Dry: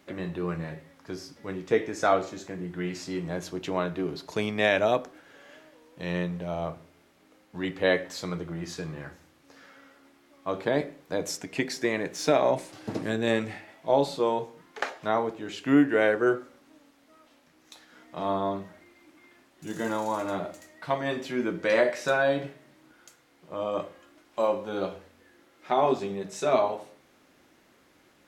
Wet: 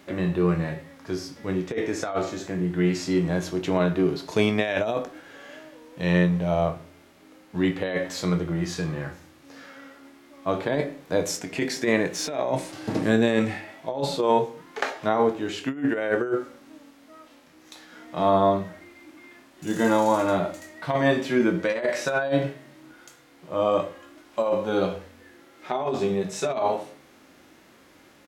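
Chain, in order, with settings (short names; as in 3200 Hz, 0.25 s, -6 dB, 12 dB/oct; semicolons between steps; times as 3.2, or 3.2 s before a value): doubler 22 ms -13 dB; negative-ratio compressor -26 dBFS, ratio -0.5; harmonic-percussive split harmonic +7 dB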